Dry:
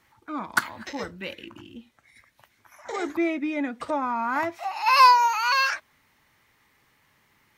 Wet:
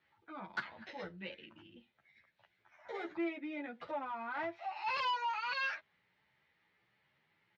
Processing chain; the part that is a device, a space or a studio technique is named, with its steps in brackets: barber-pole flanger into a guitar amplifier (endless flanger 10.7 ms +1.4 Hz; saturation -20.5 dBFS, distortion -9 dB; cabinet simulation 92–4000 Hz, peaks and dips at 97 Hz -5 dB, 180 Hz +3 dB, 260 Hz -10 dB, 1.1 kHz -7 dB); trim -7 dB

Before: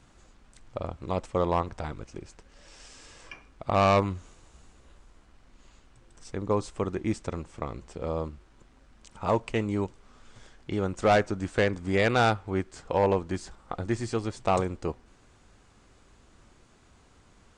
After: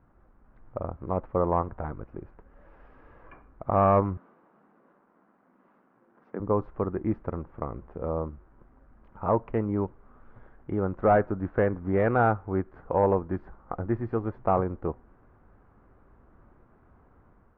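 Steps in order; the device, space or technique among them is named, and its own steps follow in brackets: 4.17–6.40 s: elliptic band-pass 190–7600 Hz; action camera in a waterproof case (low-pass 1.5 kHz 24 dB/octave; level rider gain up to 4.5 dB; trim -3.5 dB; AAC 128 kbps 48 kHz)

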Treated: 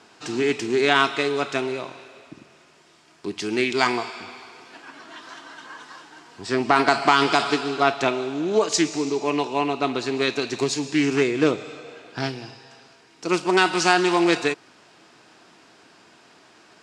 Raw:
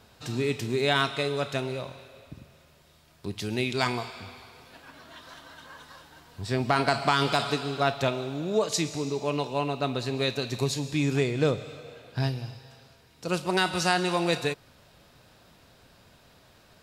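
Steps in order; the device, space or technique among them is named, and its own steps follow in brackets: full-range speaker at full volume (loudspeaker Doppler distortion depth 0.19 ms; cabinet simulation 290–8300 Hz, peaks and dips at 330 Hz +6 dB, 550 Hz -9 dB, 3.8 kHz -6 dB); trim +7.5 dB

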